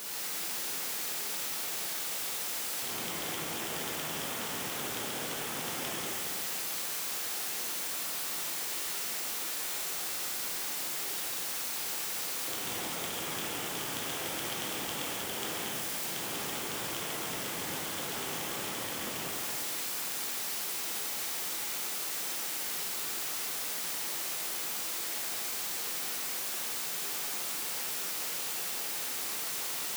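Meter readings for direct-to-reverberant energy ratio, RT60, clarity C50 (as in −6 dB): −5.0 dB, 2.4 s, −2.5 dB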